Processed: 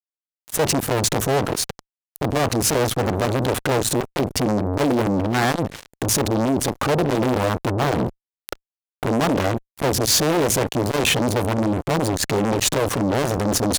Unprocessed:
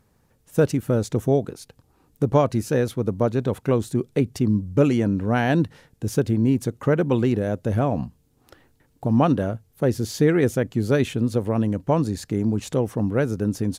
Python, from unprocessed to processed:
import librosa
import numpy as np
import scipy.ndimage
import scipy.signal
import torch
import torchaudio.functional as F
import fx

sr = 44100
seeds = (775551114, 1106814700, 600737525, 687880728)

y = fx.fuzz(x, sr, gain_db=40.0, gate_db=-45.0)
y = fx.transformer_sat(y, sr, knee_hz=500.0)